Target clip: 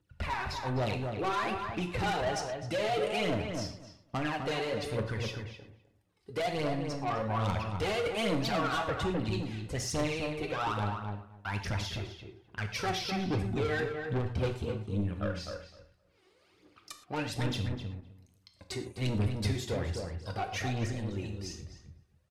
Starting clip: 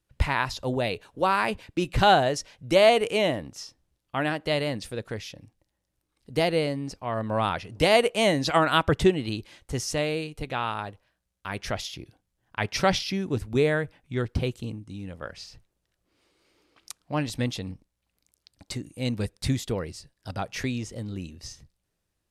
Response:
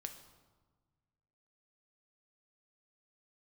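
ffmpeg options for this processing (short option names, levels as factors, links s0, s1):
-filter_complex "[0:a]highpass=71,aemphasis=mode=reproduction:type=cd,alimiter=limit=0.126:level=0:latency=1:release=374,aphaser=in_gain=1:out_gain=1:delay=2.8:decay=0.74:speed=1.2:type=triangular,asoftclip=type=tanh:threshold=0.0473,asplit=2[s0][s1];[s1]adelay=256,lowpass=f=1700:p=1,volume=0.596,asplit=2[s2][s3];[s3]adelay=256,lowpass=f=1700:p=1,volume=0.16,asplit=2[s4][s5];[s5]adelay=256,lowpass=f=1700:p=1,volume=0.16[s6];[s0][s2][s4][s6]amix=inputs=4:normalize=0[s7];[1:a]atrim=start_sample=2205,atrim=end_sample=3528,asetrate=27783,aresample=44100[s8];[s7][s8]afir=irnorm=-1:irlink=0"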